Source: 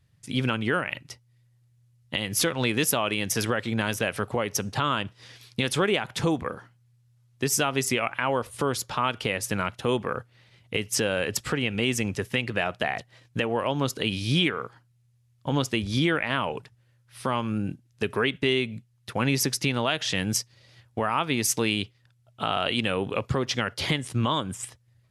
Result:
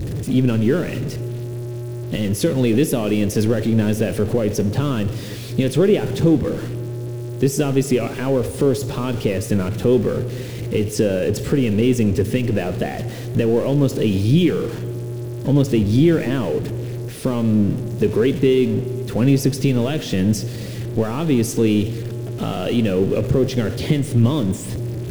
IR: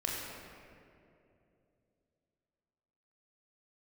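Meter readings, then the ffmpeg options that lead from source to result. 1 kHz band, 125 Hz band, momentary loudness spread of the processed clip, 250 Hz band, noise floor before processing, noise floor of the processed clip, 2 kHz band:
−4.0 dB, +12.0 dB, 11 LU, +11.5 dB, −64 dBFS, −29 dBFS, −4.0 dB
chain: -filter_complex "[0:a]aeval=exprs='val(0)+0.5*0.0531*sgn(val(0))':channel_layout=same,lowshelf=frequency=620:width_type=q:width=1.5:gain=12.5,asplit=2[link_01][link_02];[1:a]atrim=start_sample=2205,asetrate=61740,aresample=44100[link_03];[link_02][link_03]afir=irnorm=-1:irlink=0,volume=-12.5dB[link_04];[link_01][link_04]amix=inputs=2:normalize=0,volume=-7dB"

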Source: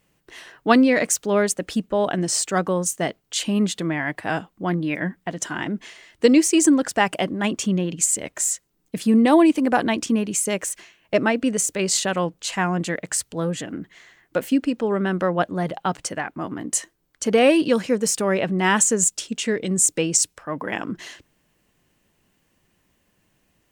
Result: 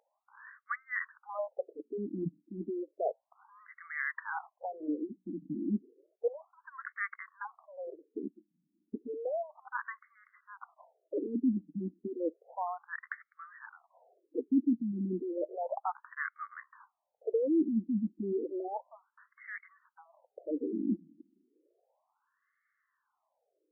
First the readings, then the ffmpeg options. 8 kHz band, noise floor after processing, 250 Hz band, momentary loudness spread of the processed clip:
below −40 dB, −83 dBFS, −14.0 dB, 18 LU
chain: -filter_complex "[0:a]equalizer=frequency=160:width=2:gain=4,acrossover=split=100|1100[link_01][link_02][link_03];[link_02]dynaudnorm=framelen=530:gausssize=9:maxgain=11.5dB[link_04];[link_01][link_04][link_03]amix=inputs=3:normalize=0,highshelf=frequency=12000:gain=-6,areverse,acompressor=threshold=-20dB:ratio=8,areverse,aeval=exprs='val(0)+0.0355*sin(2*PI*5800*n/s)':channel_layout=same,afftfilt=real='re*between(b*sr/1024,240*pow(1600/240,0.5+0.5*sin(2*PI*0.32*pts/sr))/1.41,240*pow(1600/240,0.5+0.5*sin(2*PI*0.32*pts/sr))*1.41)':imag='im*between(b*sr/1024,240*pow(1600/240,0.5+0.5*sin(2*PI*0.32*pts/sr))/1.41,240*pow(1600/240,0.5+0.5*sin(2*PI*0.32*pts/sr))*1.41)':win_size=1024:overlap=0.75,volume=-4dB"

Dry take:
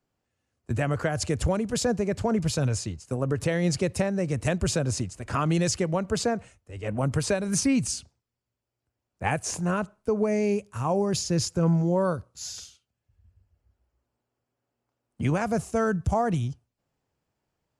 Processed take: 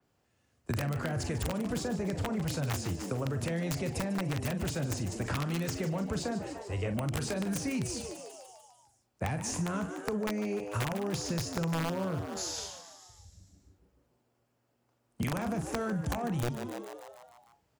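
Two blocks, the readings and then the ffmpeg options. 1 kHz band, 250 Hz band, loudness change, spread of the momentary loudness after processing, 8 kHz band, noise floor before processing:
−7.0 dB, −6.5 dB, −7.0 dB, 8 LU, −7.0 dB, −84 dBFS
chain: -filter_complex "[0:a]acrossover=split=580[link_01][link_02];[link_01]alimiter=level_in=2dB:limit=-24dB:level=0:latency=1:release=11,volume=-2dB[link_03];[link_02]asoftclip=type=tanh:threshold=-23dB[link_04];[link_03][link_04]amix=inputs=2:normalize=0,acrossover=split=240[link_05][link_06];[link_06]acompressor=threshold=-36dB:ratio=5[link_07];[link_05][link_07]amix=inputs=2:normalize=0,highpass=41,asplit=2[link_08][link_09];[link_09]adelay=42,volume=-9dB[link_10];[link_08][link_10]amix=inputs=2:normalize=0,aeval=exprs='(mod(15.8*val(0)+1,2)-1)/15.8':channel_layout=same,asplit=8[link_11][link_12][link_13][link_14][link_15][link_16][link_17][link_18];[link_12]adelay=148,afreqshift=100,volume=-12.5dB[link_19];[link_13]adelay=296,afreqshift=200,volume=-17.1dB[link_20];[link_14]adelay=444,afreqshift=300,volume=-21.7dB[link_21];[link_15]adelay=592,afreqshift=400,volume=-26.2dB[link_22];[link_16]adelay=740,afreqshift=500,volume=-30.8dB[link_23];[link_17]adelay=888,afreqshift=600,volume=-35.4dB[link_24];[link_18]adelay=1036,afreqshift=700,volume=-40dB[link_25];[link_11][link_19][link_20][link_21][link_22][link_23][link_24][link_25]amix=inputs=8:normalize=0,acompressor=threshold=-35dB:ratio=6,adynamicequalizer=threshold=0.00158:dfrequency=4100:dqfactor=0.7:tfrequency=4100:tqfactor=0.7:attack=5:release=100:ratio=0.375:range=2:mode=cutabove:tftype=highshelf,volume=5.5dB"

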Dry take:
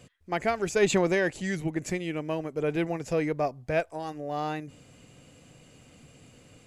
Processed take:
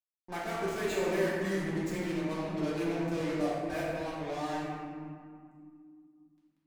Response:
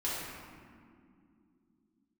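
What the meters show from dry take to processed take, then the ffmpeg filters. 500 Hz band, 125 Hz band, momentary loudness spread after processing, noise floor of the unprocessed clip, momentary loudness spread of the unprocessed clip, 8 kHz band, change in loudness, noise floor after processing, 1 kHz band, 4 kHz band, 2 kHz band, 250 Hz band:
−5.0 dB, −4.0 dB, 12 LU, −56 dBFS, 10 LU, −8.0 dB, −4.5 dB, −78 dBFS, −4.0 dB, −4.0 dB, −5.5 dB, −2.0 dB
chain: -filter_complex "[0:a]highshelf=frequency=2700:gain=-4,acrossover=split=360|1100|2400[link_01][link_02][link_03][link_04];[link_01]alimiter=level_in=5.5dB:limit=-24dB:level=0:latency=1,volume=-5.5dB[link_05];[link_05][link_02][link_03][link_04]amix=inputs=4:normalize=0,acompressor=threshold=-42dB:ratio=1.5,aeval=exprs='0.0841*(cos(1*acos(clip(val(0)/0.0841,-1,1)))-cos(1*PI/2))+0.00944*(cos(3*acos(clip(val(0)/0.0841,-1,1)))-cos(3*PI/2))+0.00596*(cos(5*acos(clip(val(0)/0.0841,-1,1)))-cos(5*PI/2))+0.00473*(cos(7*acos(clip(val(0)/0.0841,-1,1)))-cos(7*PI/2))':channel_layout=same,asoftclip=type=tanh:threshold=-30.5dB,acrusher=bits=6:mix=0:aa=0.5[link_06];[1:a]atrim=start_sample=2205[link_07];[link_06][link_07]afir=irnorm=-1:irlink=0"

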